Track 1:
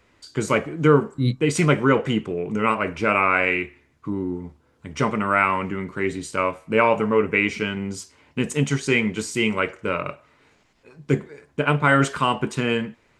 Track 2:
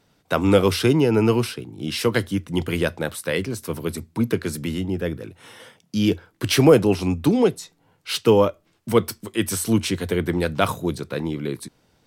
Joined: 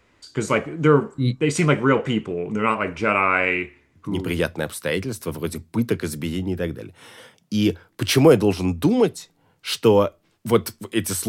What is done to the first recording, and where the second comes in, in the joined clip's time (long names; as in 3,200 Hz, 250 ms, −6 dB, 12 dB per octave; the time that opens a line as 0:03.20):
track 1
0:04.19: continue with track 2 from 0:02.61, crossfade 0.48 s equal-power